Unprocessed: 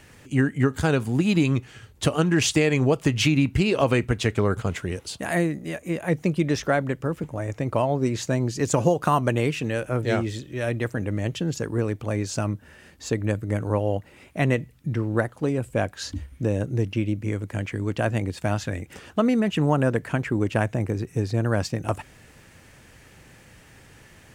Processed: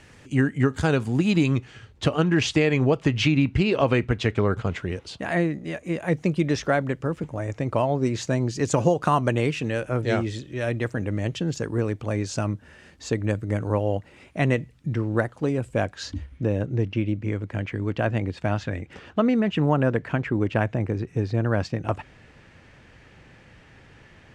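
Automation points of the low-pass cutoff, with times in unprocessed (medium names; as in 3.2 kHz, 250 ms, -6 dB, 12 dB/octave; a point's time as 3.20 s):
1.43 s 7.8 kHz
2.09 s 4.4 kHz
5.44 s 4.4 kHz
6.04 s 7.6 kHz
15.79 s 7.6 kHz
16.48 s 3.9 kHz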